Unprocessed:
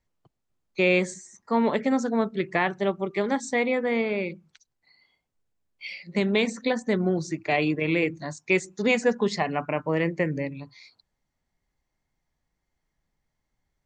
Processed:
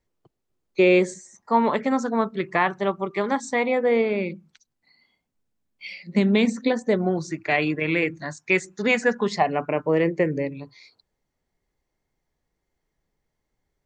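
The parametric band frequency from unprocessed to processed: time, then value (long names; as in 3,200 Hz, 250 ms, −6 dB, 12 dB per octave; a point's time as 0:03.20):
parametric band +8 dB 0.83 octaves
0:01.05 390 Hz
0:01.65 1,100 Hz
0:03.56 1,100 Hz
0:04.25 230 Hz
0:06.54 230 Hz
0:07.39 1,600 Hz
0:09.18 1,600 Hz
0:09.60 420 Hz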